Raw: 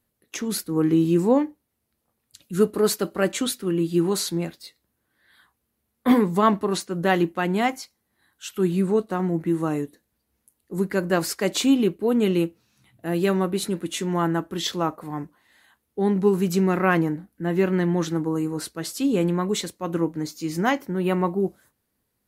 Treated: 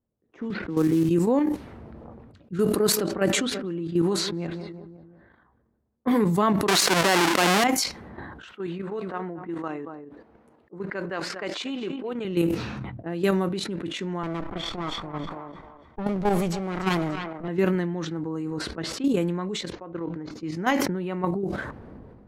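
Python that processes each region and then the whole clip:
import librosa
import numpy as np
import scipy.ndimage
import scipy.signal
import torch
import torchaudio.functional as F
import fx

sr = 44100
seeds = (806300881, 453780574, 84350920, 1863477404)

y = fx.chain(x, sr, fx.lowpass(hz=2600.0, slope=24),
    fx.quant_companded(bits=6),
    fx.band_squash(depth_pct=40), at=(0.5, 1.09))
y = fx.chain(y, sr, fx.high_shelf(hz=2800.0, db=-6.0),
    fx.echo_feedback(ms=178, feedback_pct=51, wet_db=-22.0), at=(2.79, 6.11))
y = fx.chain(y, sr, fx.halfwave_hold(),
    fx.weighting(curve='A'),
    fx.env_flatten(amount_pct=70), at=(6.68, 7.64))
y = fx.chain(y, sr, fx.highpass(hz=800.0, slope=6),
    fx.high_shelf(hz=8100.0, db=-5.5),
    fx.echo_single(ms=234, db=-16.0), at=(8.52, 12.25))
y = fx.chain(y, sr, fx.lower_of_two(delay_ms=0.89),
    fx.echo_thinned(ms=291, feedback_pct=32, hz=720.0, wet_db=-8.5), at=(14.23, 17.48))
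y = fx.chain(y, sr, fx.peak_eq(hz=200.0, db=-9.0, octaves=0.89),
    fx.comb_fb(f0_hz=170.0, decay_s=1.5, harmonics='all', damping=0.0, mix_pct=40),
    fx.resample_bad(factor=3, down='none', up='filtered'), at=(19.72, 20.31))
y = fx.level_steps(y, sr, step_db=10)
y = fx.env_lowpass(y, sr, base_hz=740.0, full_db=-22.5)
y = fx.sustainer(y, sr, db_per_s=32.0)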